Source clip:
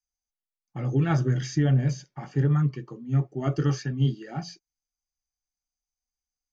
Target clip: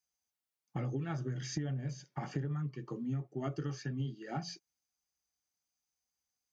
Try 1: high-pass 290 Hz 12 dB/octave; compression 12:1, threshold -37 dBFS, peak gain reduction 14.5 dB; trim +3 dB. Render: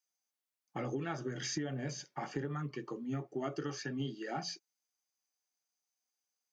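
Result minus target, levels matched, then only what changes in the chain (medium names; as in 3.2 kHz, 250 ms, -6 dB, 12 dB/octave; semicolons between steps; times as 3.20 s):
125 Hz band -5.0 dB
change: high-pass 97 Hz 12 dB/octave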